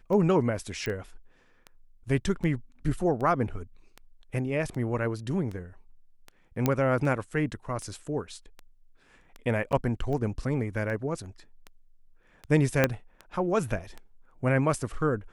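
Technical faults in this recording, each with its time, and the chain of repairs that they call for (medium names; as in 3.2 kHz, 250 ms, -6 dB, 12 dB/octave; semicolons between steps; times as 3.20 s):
tick 78 rpm -26 dBFS
0.86 s: pop -19 dBFS
6.66 s: pop -10 dBFS
9.72–9.73 s: dropout 7.6 ms
12.84 s: pop -7 dBFS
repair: de-click; interpolate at 9.72 s, 7.6 ms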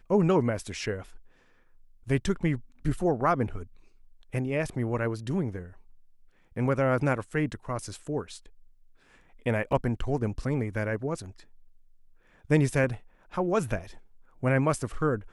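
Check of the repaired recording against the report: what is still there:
12.84 s: pop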